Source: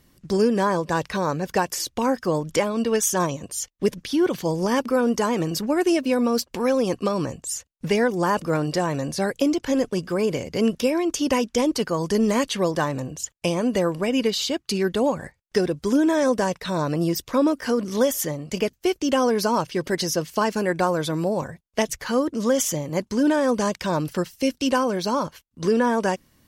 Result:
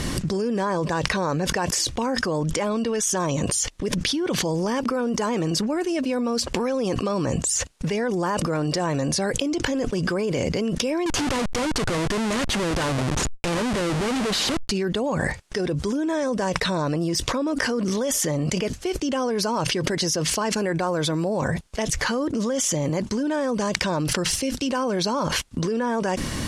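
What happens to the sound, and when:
11.06–14.71 Schmitt trigger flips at -33.5 dBFS
whole clip: LPF 10000 Hz 24 dB/oct; fast leveller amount 100%; gain -8 dB

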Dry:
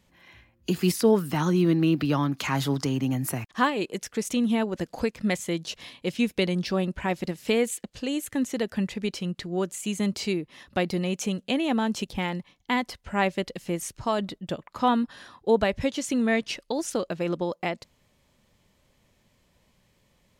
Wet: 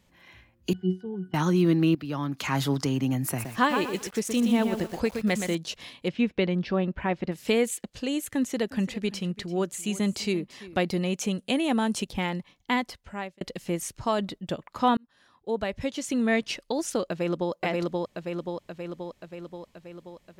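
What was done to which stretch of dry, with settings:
0.73–1.34 octave resonator F#, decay 0.2 s
1.95–2.58 fade in, from -14 dB
3.26–5.55 lo-fi delay 0.121 s, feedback 35%, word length 7-bit, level -6 dB
6.08–7.32 LPF 2700 Hz
8.37–10.77 echo 0.339 s -17.5 dB
11.38–12 bell 9300 Hz +12.5 dB 0.37 oct
12.73–13.41 fade out
14.97–16.36 fade in
17.08–17.52 echo throw 0.53 s, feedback 65%, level -1 dB

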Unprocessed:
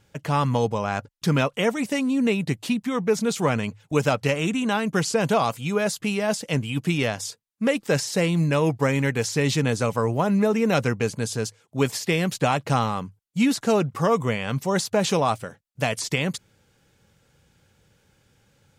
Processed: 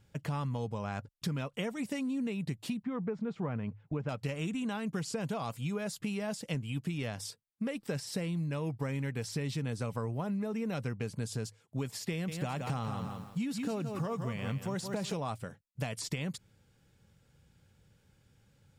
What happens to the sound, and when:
2.83–4.09 LPF 1700 Hz
7.15–11.22 notch 6900 Hz, Q 10
12.11–15.14 lo-fi delay 0.17 s, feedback 35%, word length 8-bit, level -8 dB
whole clip: tone controls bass +7 dB, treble +1 dB; notch 6200 Hz, Q 15; compressor 10:1, threshold -23 dBFS; gain -8.5 dB

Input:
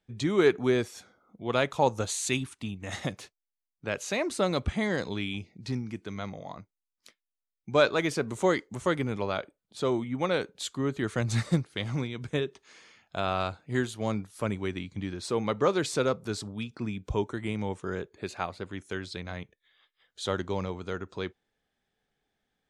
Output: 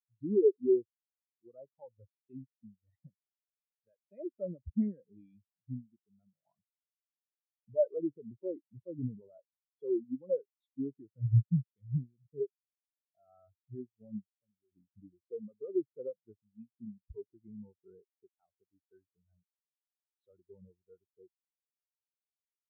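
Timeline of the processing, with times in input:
6.46–9.82 gain +5 dB
14.28–14.72 compressor 2:1, threshold -43 dBFS
whole clip: treble ducked by the level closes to 1200 Hz, closed at -22 dBFS; limiter -21 dBFS; spectral expander 4:1; gain +5 dB

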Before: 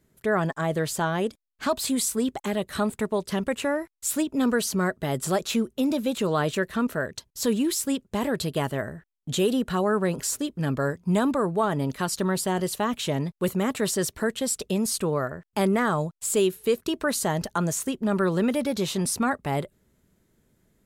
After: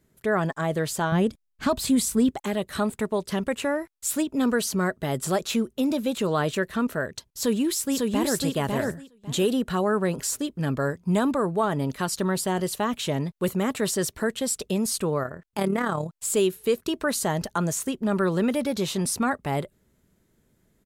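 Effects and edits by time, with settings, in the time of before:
1.12–2.31 tone controls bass +11 dB, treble -1 dB
7.29–8.36 echo throw 0.55 s, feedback 15%, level -2.5 dB
15.23–16.1 AM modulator 36 Hz, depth 40%

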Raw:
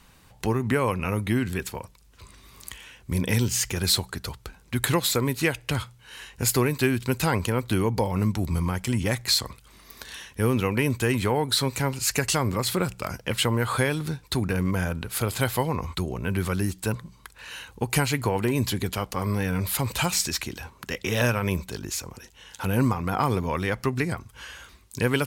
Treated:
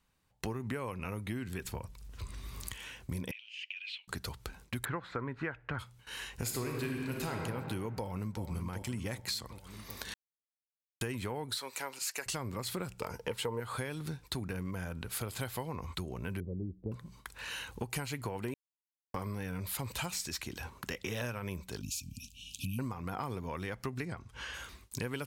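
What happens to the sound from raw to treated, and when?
1.64–2.73 low shelf 130 Hz +12 dB
3.31–4.08 Butterworth band-pass 2700 Hz, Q 4.1
4.85–5.79 synth low-pass 1500 Hz, resonance Q 2.7
6.36–7.39 reverb throw, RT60 1.9 s, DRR 0 dB
7.98–8.44 echo throw 0.38 s, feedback 50%, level -8.5 dB
10.14–11.01 mute
11.58–12.26 HPF 550 Hz
13–13.6 small resonant body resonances 460/900 Hz, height 14 dB
16.4–16.92 steep low-pass 530 Hz
18.54–19.14 mute
21.81–22.79 brick-wall FIR band-stop 290–2300 Hz
24.05–24.54 air absorption 55 m
whole clip: gate with hold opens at -41 dBFS; compressor 4:1, threshold -37 dBFS

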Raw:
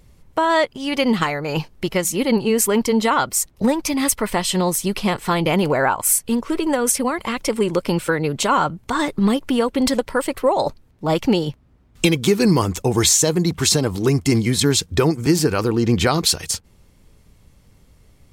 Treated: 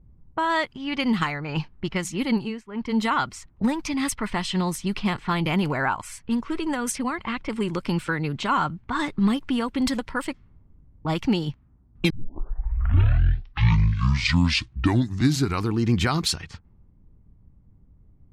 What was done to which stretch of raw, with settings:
2.33–2.97 dip -22 dB, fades 0.32 s
10.34–11.05 room tone
12.1 tape start 3.74 s
whole clip: high shelf 4700 Hz -10 dB; low-pass opened by the level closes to 560 Hz, open at -16 dBFS; bell 520 Hz -12 dB 1.1 oct; gain -1.5 dB

